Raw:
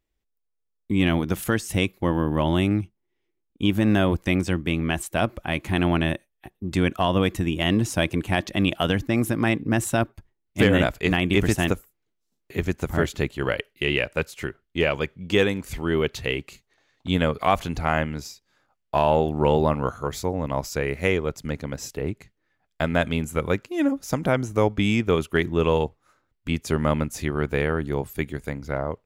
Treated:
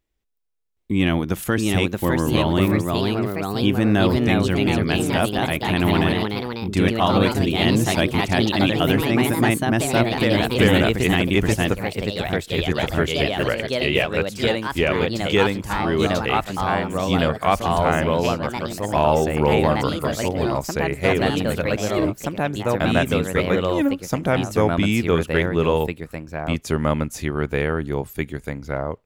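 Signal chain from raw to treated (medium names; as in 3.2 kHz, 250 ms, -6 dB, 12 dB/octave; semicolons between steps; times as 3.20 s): ever faster or slower copies 769 ms, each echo +2 st, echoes 3; trim +1.5 dB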